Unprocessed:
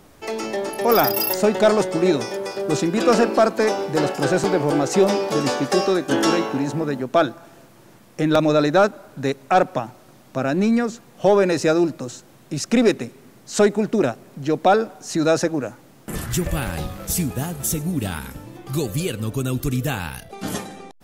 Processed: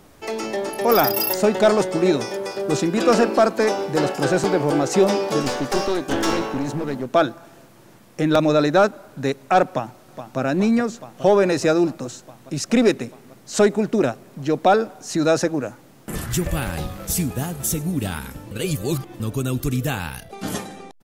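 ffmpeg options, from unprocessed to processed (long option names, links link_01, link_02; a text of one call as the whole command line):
ffmpeg -i in.wav -filter_complex "[0:a]asettb=1/sr,asplit=3[link_01][link_02][link_03];[link_01]atrim=end=5.424[link_04];[link_02]atrim=start=5.42:end=7.09,asetpts=PTS-STARTPTS,afade=type=in:duration=0.004:curve=qsin,afade=type=out:start_time=1.666:duration=0.004:curve=qsin,aeval=exprs='clip(val(0),-1,0.0531)':channel_layout=same[link_05];[link_03]atrim=start=7.086[link_06];[link_04][link_05]acrossfade=duration=0.004:curve1=hsin:curve2=qsin[link_07];[link_07][link_06]acrossfade=duration=0.004:curve1=qsin:curve2=hsin,asplit=2[link_08][link_09];[link_09]afade=type=in:start_time=9.68:duration=0.01,afade=type=out:start_time=10.39:duration=0.01,aecho=0:1:420|840|1260|1680|2100|2520|2940|3360|3780|4200|4620|5040:0.298538|0.238831|0.191064|0.152852|0.122281|0.097825|0.07826|0.062608|0.0500864|0.0400691|0.0320553|0.0256442[link_10];[link_08][link_10]amix=inputs=2:normalize=0,asplit=3[link_11][link_12][link_13];[link_11]atrim=end=18.512[link_14];[link_12]atrim=start=18.508:end=19.202,asetpts=PTS-STARTPTS,areverse[link_15];[link_13]atrim=start=19.198[link_16];[link_14][link_15]acrossfade=duration=0.004:curve1=hsin:curve2=hsin[link_17];[link_17][link_16]acrossfade=duration=0.004:curve1=hsin:curve2=hsin" out.wav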